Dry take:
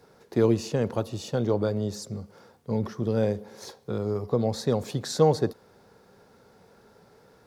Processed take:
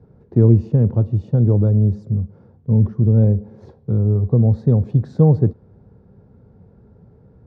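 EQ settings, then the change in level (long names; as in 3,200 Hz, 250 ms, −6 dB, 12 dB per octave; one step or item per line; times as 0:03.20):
high-pass filter 82 Hz
RIAA equalisation playback
spectral tilt −4 dB per octave
−6.5 dB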